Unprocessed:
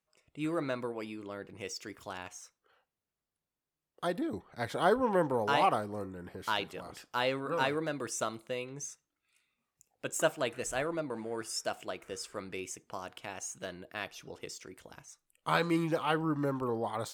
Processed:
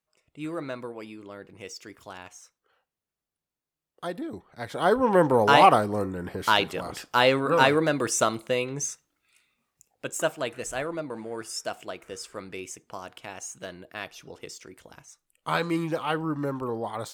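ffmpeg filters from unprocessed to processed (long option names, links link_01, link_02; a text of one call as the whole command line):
ffmpeg -i in.wav -af "volume=11dB,afade=type=in:start_time=4.67:duration=0.77:silence=0.281838,afade=type=out:start_time=8.86:duration=1.33:silence=0.375837" out.wav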